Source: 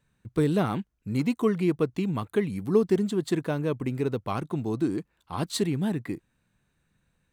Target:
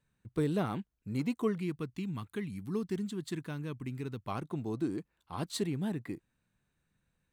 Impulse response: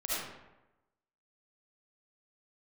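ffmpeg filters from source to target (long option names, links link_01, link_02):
-filter_complex "[0:a]asettb=1/sr,asplit=3[link_01][link_02][link_03];[link_01]atrim=end=1.584[link_04];[link_02]atrim=start=1.58:end=4.28,asetpts=PTS-STARTPTS,afade=type=in:duration=0.004:curve=qsin,afade=type=out:start_time=2.696:duration=0.004:curve=qsin,equalizer=frequency=570:width_type=o:width=1.4:gain=-12[link_05];[link_03]atrim=start=4.276[link_06];[link_04][link_05]acrossfade=duration=0.004:curve1=hsin:curve2=qsin[link_07];[link_07][link_06]acrossfade=duration=0.004:curve1=qsin:curve2=hsin,volume=-7dB"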